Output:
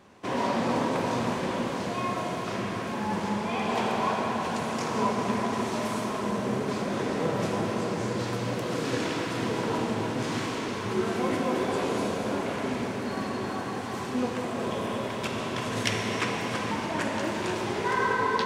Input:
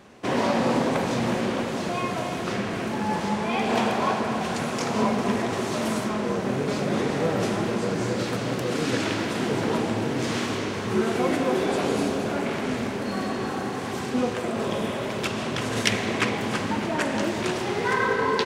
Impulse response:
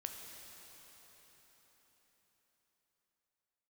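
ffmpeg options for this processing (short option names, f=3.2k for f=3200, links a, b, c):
-filter_complex "[0:a]equalizer=f=1k:t=o:w=0.23:g=5.5[a];[1:a]atrim=start_sample=2205[b];[a][b]afir=irnorm=-1:irlink=0,volume=-2dB"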